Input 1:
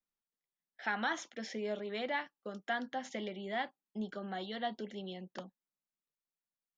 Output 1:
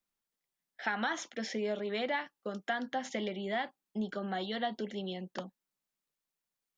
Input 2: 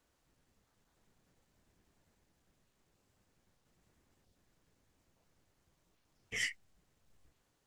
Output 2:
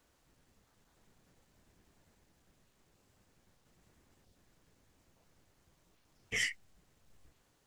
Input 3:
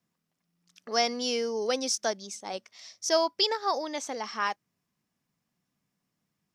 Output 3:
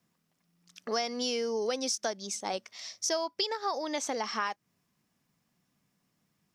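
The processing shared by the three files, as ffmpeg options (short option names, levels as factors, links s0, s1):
-af "acompressor=threshold=0.02:ratio=5,volume=1.78"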